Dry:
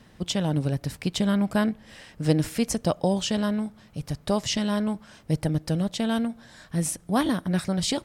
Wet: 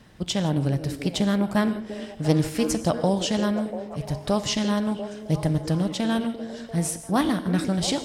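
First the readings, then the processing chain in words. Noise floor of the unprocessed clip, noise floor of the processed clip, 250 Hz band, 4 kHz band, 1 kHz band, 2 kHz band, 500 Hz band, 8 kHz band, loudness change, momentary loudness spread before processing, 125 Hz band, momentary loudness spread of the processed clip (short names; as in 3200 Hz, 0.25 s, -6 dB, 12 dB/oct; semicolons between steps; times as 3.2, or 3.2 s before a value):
-54 dBFS, -41 dBFS, +1.5 dB, +1.0 dB, +2.5 dB, +1.5 dB, +2.0 dB, +0.5 dB, +1.5 dB, 8 LU, +1.5 dB, 8 LU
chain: delay with a stepping band-pass 0.345 s, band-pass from 360 Hz, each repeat 0.7 oct, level -6 dB; non-linear reverb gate 0.19 s flat, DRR 11 dB; Doppler distortion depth 0.15 ms; gain +1 dB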